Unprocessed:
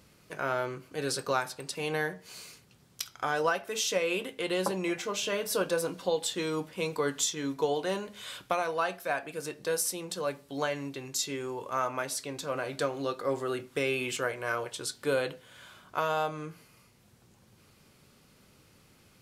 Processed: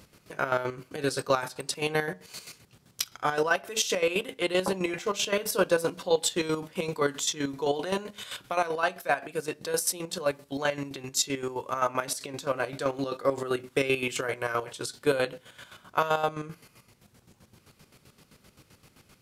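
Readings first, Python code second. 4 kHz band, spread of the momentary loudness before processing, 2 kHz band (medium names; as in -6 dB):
+3.0 dB, 8 LU, +3.0 dB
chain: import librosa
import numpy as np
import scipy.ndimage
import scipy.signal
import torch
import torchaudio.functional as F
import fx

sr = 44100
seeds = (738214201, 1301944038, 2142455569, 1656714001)

y = fx.chopper(x, sr, hz=7.7, depth_pct=65, duty_pct=40)
y = F.gain(torch.from_numpy(y), 6.0).numpy()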